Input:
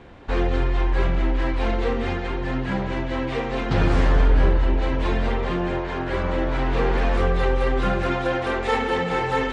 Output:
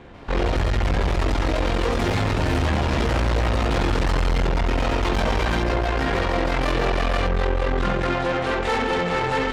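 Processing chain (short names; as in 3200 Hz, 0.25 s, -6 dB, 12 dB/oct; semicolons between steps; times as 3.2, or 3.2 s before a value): echoes that change speed 0.145 s, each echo +5 st, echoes 3; in parallel at +1 dB: limiter -15.5 dBFS, peak gain reduction 10 dB; on the sum: tube stage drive 17 dB, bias 0.8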